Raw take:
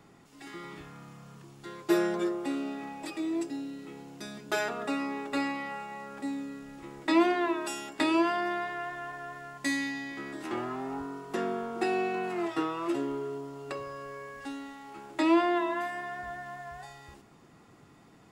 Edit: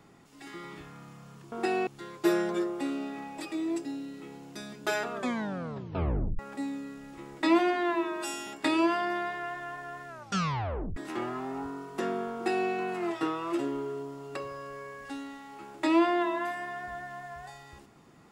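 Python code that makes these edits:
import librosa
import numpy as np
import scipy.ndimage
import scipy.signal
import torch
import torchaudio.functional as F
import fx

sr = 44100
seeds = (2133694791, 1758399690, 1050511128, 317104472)

y = fx.edit(x, sr, fx.tape_stop(start_s=4.78, length_s=1.26),
    fx.stretch_span(start_s=7.24, length_s=0.59, factor=1.5),
    fx.tape_stop(start_s=9.44, length_s=0.88),
    fx.duplicate(start_s=11.7, length_s=0.35, to_s=1.52), tone=tone)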